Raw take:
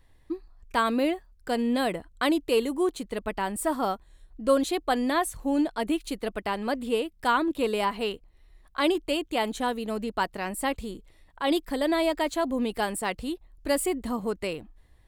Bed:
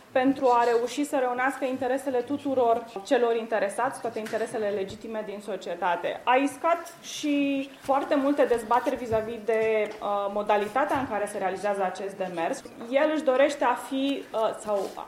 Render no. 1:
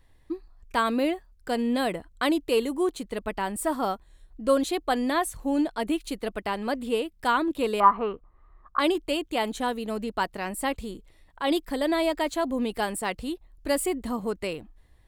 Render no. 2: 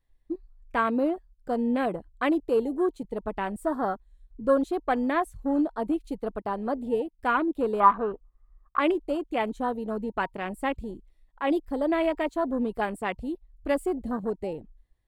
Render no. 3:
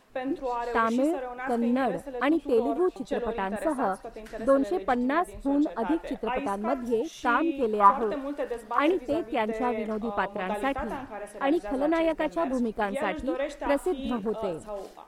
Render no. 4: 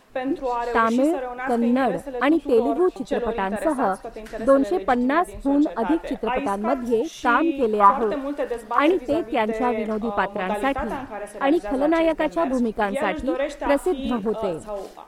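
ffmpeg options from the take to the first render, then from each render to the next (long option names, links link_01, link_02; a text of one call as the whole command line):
ffmpeg -i in.wav -filter_complex "[0:a]asettb=1/sr,asplit=3[link_01][link_02][link_03];[link_01]atrim=end=7.804[link_04];[link_02]atrim=start=7.8:end=8.79,asetpts=PTS-STARTPTS,afade=type=in:duration=0.004:curve=qsin,afade=type=out:start_time=0.986:duration=0.004:curve=qsin,lowpass=frequency=1200:width_type=q:width=9.7[link_05];[link_03]atrim=start=8.786[link_06];[link_04][link_05]acrossfade=duration=0.004:curve1=hsin:curve2=qsin[link_07];[link_07][link_06]acrossfade=duration=0.004:curve1=qsin:curve2=hsin" out.wav
ffmpeg -i in.wav -af "afwtdn=0.0224,bandreject=frequency=940:width=28" out.wav
ffmpeg -i in.wav -i bed.wav -filter_complex "[1:a]volume=-9.5dB[link_01];[0:a][link_01]amix=inputs=2:normalize=0" out.wav
ffmpeg -i in.wav -af "volume=5.5dB,alimiter=limit=-3dB:level=0:latency=1" out.wav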